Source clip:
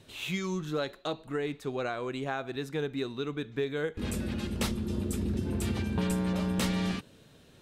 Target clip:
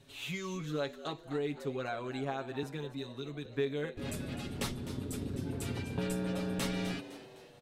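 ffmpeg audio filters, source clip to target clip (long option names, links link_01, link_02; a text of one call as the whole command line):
ffmpeg -i in.wav -filter_complex "[0:a]aecho=1:1:7.2:0.75,asettb=1/sr,asplit=3[link_01][link_02][link_03];[link_01]atrim=end=2.634[link_04];[link_02]atrim=start=2.63:end=3.46,asetpts=PTS-STARTPTS,afade=type=in:duration=0.004:curve=qsin,afade=type=out:start_time=0.826:duration=0.004:curve=qsin,acrossover=split=150|3000[link_05][link_06][link_07];[link_06]acompressor=threshold=-34dB:ratio=6[link_08];[link_05][link_08][link_07]amix=inputs=3:normalize=0[link_09];[link_03]atrim=start=3.456[link_10];[link_04][link_09]acrossfade=duration=0.004:curve1=hsin:curve2=qsin[link_11];[link_11][link_10]acrossfade=duration=0.004:curve1=qsin:curve2=hsin,asplit=6[link_12][link_13][link_14][link_15][link_16][link_17];[link_13]adelay=255,afreqshift=100,volume=-14dB[link_18];[link_14]adelay=510,afreqshift=200,volume=-20.4dB[link_19];[link_15]adelay=765,afreqshift=300,volume=-26.8dB[link_20];[link_16]adelay=1020,afreqshift=400,volume=-33.1dB[link_21];[link_17]adelay=1275,afreqshift=500,volume=-39.5dB[link_22];[link_12][link_18][link_19][link_20][link_21][link_22]amix=inputs=6:normalize=0,volume=-6dB" out.wav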